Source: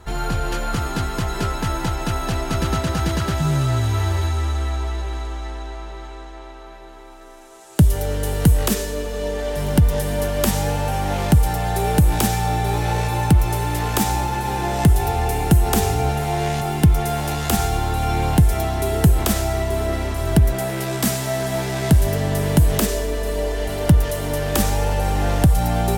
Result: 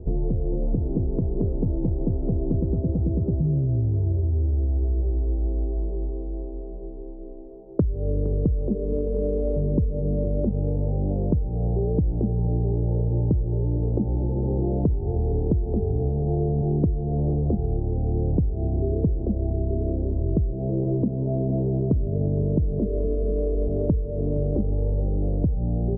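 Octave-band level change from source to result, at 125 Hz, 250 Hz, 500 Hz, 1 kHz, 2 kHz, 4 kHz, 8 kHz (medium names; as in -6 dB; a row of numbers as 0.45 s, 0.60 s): -3.5 dB, -2.5 dB, -3.5 dB, -20.0 dB, under -40 dB, under -40 dB, under -40 dB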